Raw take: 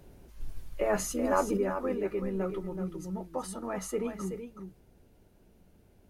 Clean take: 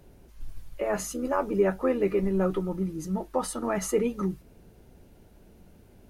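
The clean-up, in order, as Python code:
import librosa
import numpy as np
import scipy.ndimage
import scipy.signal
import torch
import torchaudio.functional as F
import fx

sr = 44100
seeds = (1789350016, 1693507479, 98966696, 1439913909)

y = fx.fix_echo_inverse(x, sr, delay_ms=377, level_db=-8.0)
y = fx.fix_level(y, sr, at_s=1.57, step_db=7.5)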